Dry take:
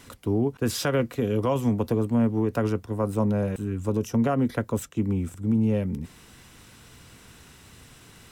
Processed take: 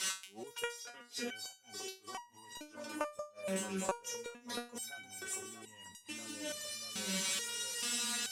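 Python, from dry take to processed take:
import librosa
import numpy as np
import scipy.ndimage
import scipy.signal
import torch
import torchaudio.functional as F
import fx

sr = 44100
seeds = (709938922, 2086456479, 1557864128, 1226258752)

p1 = fx.rider(x, sr, range_db=10, speed_s=2.0)
p2 = x + F.gain(torch.from_numpy(p1), 1.5).numpy()
p3 = scipy.signal.sosfilt(scipy.signal.butter(2, 6000.0, 'lowpass', fs=sr, output='sos'), p2)
p4 = fx.tilt_eq(p3, sr, slope=4.5)
p5 = p4 + fx.echo_split(p4, sr, split_hz=1700.0, low_ms=639, high_ms=342, feedback_pct=52, wet_db=-7.5, dry=0)
p6 = fx.level_steps(p5, sr, step_db=21)
p7 = fx.highpass(p6, sr, hz=120.0, slope=6)
p8 = fx.high_shelf(p7, sr, hz=3900.0, db=6.5)
p9 = fx.gate_flip(p8, sr, shuts_db=-24.0, range_db=-31)
p10 = fx.resonator_held(p9, sr, hz=2.3, low_hz=190.0, high_hz=950.0)
y = F.gain(torch.from_numpy(p10), 15.0).numpy()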